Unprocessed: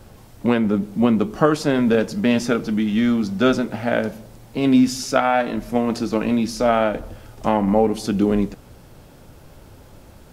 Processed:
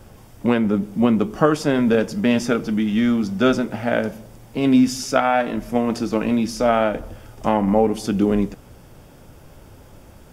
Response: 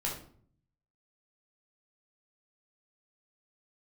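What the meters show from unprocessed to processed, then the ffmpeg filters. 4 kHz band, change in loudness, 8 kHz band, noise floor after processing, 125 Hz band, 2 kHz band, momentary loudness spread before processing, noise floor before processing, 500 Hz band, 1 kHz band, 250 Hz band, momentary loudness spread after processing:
-0.5 dB, 0.0 dB, 0.0 dB, -46 dBFS, 0.0 dB, 0.0 dB, 6 LU, -46 dBFS, 0.0 dB, 0.0 dB, 0.0 dB, 6 LU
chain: -af "bandreject=f=4.1k:w=7.7"

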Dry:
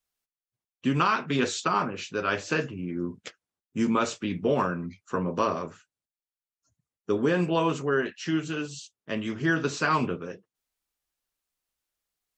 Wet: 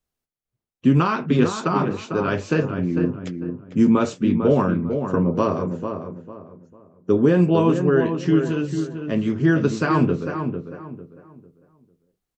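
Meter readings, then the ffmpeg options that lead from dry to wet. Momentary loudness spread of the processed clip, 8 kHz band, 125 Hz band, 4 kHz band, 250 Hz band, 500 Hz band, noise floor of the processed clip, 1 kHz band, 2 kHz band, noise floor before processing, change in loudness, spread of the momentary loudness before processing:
13 LU, n/a, +11.5 dB, -2.0 dB, +10.0 dB, +7.5 dB, -85 dBFS, +2.0 dB, 0.0 dB, under -85 dBFS, +7.0 dB, 12 LU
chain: -filter_complex "[0:a]tiltshelf=f=650:g=7,asplit=2[a][b];[b]adelay=449,lowpass=f=1.8k:p=1,volume=-7dB,asplit=2[c][d];[d]adelay=449,lowpass=f=1.8k:p=1,volume=0.31,asplit=2[e][f];[f]adelay=449,lowpass=f=1.8k:p=1,volume=0.31,asplit=2[g][h];[h]adelay=449,lowpass=f=1.8k:p=1,volume=0.31[i];[a][c][e][g][i]amix=inputs=5:normalize=0,volume=4.5dB"

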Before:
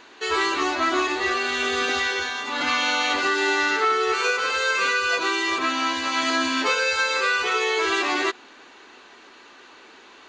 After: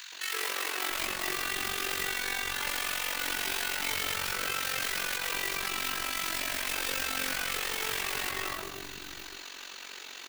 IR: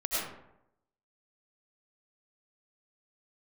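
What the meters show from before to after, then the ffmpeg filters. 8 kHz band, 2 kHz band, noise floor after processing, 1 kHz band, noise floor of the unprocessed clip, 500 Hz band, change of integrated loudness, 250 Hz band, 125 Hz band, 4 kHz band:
-0.5 dB, -10.5 dB, -45 dBFS, -13.5 dB, -49 dBFS, -15.5 dB, -9.0 dB, -16.0 dB, n/a, -7.0 dB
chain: -filter_complex "[0:a]asplit=2[a][b];[1:a]atrim=start_sample=2205,lowpass=2.7k,adelay=84[c];[b][c]afir=irnorm=-1:irlink=0,volume=-12dB[d];[a][d]amix=inputs=2:normalize=0,aeval=exprs='(mod(6.31*val(0)+1,2)-1)/6.31':c=same,aeval=exprs='0.158*(cos(1*acos(clip(val(0)/0.158,-1,1)))-cos(1*PI/2))+0.0398*(cos(4*acos(clip(val(0)/0.158,-1,1)))-cos(4*PI/2))':c=same,asoftclip=type=hard:threshold=-30dB,acrossover=split=290|1100[e][f][g];[f]adelay=120[h];[e]adelay=680[i];[i][h][g]amix=inputs=3:normalize=0,acrossover=split=2700[j][k];[k]acompressor=threshold=-49dB:ratio=4:attack=1:release=60[l];[j][l]amix=inputs=2:normalize=0,acrusher=bits=6:mode=log:mix=0:aa=0.000001,crystalizer=i=7:c=0,tremolo=f=46:d=0.75,volume=-1dB"

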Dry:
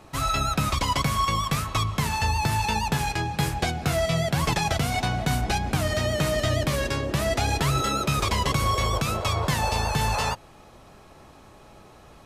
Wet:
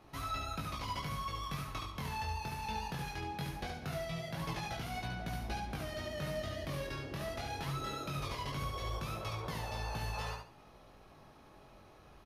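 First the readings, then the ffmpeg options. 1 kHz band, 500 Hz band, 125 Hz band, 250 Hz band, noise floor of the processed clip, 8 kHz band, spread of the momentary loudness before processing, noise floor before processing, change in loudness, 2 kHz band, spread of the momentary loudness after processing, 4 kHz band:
-14.5 dB, -14.5 dB, -15.5 dB, -14.5 dB, -59 dBFS, -19.0 dB, 3 LU, -50 dBFS, -15.0 dB, -14.5 dB, 20 LU, -15.5 dB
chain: -filter_complex "[0:a]equalizer=f=7.7k:t=o:w=0.35:g=-12,acompressor=threshold=-32dB:ratio=2,flanger=delay=17.5:depth=5.6:speed=0.2,asplit=2[a][b];[b]aecho=0:1:71|142|213|284:0.562|0.152|0.041|0.0111[c];[a][c]amix=inputs=2:normalize=0,volume=-7dB"

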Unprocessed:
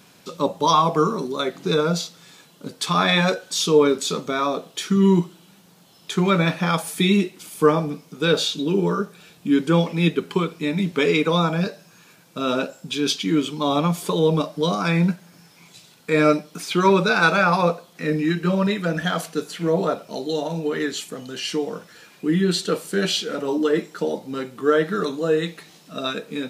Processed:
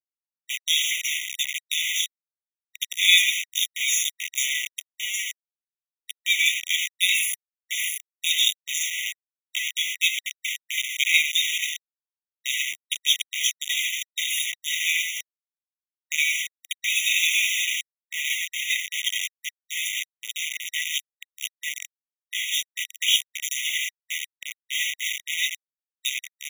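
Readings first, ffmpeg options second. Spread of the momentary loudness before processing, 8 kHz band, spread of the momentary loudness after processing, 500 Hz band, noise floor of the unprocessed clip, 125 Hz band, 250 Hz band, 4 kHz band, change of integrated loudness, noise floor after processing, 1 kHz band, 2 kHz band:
12 LU, +8.5 dB, 12 LU, under -40 dB, -52 dBFS, under -40 dB, under -40 dB, +5.0 dB, -2.0 dB, under -85 dBFS, under -40 dB, +2.5 dB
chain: -filter_complex "[0:a]acrossover=split=1600|5800[a][b][c];[a]adelay=90[d];[c]adelay=360[e];[d][b][e]amix=inputs=3:normalize=0,aeval=exprs='val(0)*gte(abs(val(0)),0.0841)':c=same,afftfilt=real='re*eq(mod(floor(b*sr/1024/1900),2),1)':imag='im*eq(mod(floor(b*sr/1024/1900),2),1)':win_size=1024:overlap=0.75,volume=8.5dB"

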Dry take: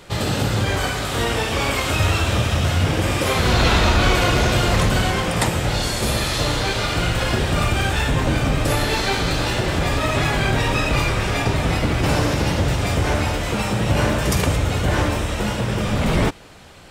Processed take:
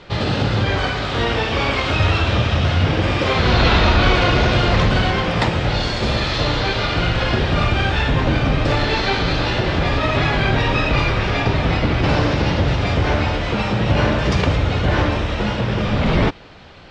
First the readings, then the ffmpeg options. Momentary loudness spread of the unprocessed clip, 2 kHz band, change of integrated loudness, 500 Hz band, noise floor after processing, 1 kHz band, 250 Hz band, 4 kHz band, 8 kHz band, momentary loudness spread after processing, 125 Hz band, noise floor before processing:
4 LU, +2.0 dB, +1.5 dB, +2.0 dB, -23 dBFS, +2.0 dB, +2.0 dB, +1.5 dB, -11.0 dB, 5 LU, +2.0 dB, -25 dBFS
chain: -af "lowpass=f=4.8k:w=0.5412,lowpass=f=4.8k:w=1.3066,volume=2dB"

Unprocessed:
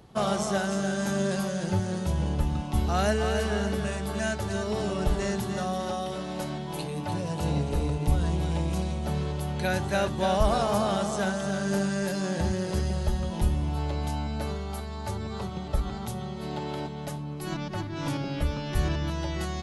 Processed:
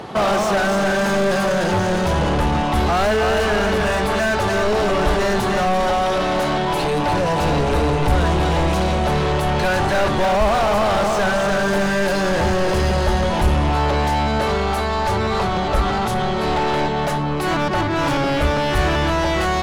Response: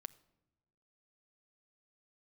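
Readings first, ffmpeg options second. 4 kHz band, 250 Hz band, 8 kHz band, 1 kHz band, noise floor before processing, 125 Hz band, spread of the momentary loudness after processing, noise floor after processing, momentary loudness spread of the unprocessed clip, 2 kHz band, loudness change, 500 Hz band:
+12.0 dB, +8.0 dB, +6.5 dB, +14.0 dB, -35 dBFS, +6.5 dB, 2 LU, -21 dBFS, 8 LU, +14.0 dB, +10.5 dB, +12.0 dB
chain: -filter_complex "[0:a]asplit=2[a][b];[b]highpass=f=720:p=1,volume=35dB,asoftclip=type=tanh:threshold=-9.5dB[c];[a][c]amix=inputs=2:normalize=0,lowpass=f=1.6k:p=1,volume=-6dB,asubboost=boost=2.5:cutoff=94"

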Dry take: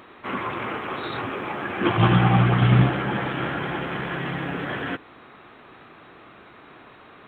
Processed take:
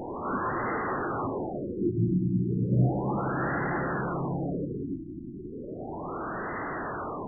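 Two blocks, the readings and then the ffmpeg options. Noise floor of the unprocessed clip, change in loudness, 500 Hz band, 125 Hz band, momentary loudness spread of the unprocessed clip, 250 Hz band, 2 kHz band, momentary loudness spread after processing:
-49 dBFS, -7.0 dB, -2.0 dB, -7.5 dB, 12 LU, -3.5 dB, -7.5 dB, 11 LU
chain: -af "aeval=exprs='val(0)+0.5*0.1*sgn(val(0))':c=same,bandreject=f=60:t=h:w=6,bandreject=f=120:t=h:w=6,afftfilt=real='re*lt(b*sr/1024,360*pow(2100/360,0.5+0.5*sin(2*PI*0.34*pts/sr)))':imag='im*lt(b*sr/1024,360*pow(2100/360,0.5+0.5*sin(2*PI*0.34*pts/sr)))':win_size=1024:overlap=0.75,volume=-7dB"

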